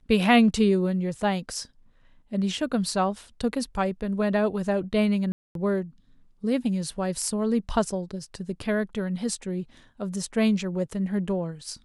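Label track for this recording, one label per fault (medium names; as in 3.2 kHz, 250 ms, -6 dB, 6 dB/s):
5.320000	5.550000	dropout 232 ms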